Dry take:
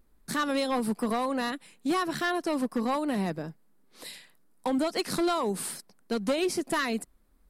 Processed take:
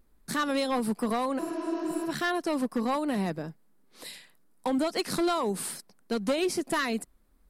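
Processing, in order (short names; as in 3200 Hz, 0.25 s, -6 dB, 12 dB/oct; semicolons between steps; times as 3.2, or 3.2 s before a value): spectral repair 1.41–2.03, 210–6900 Hz after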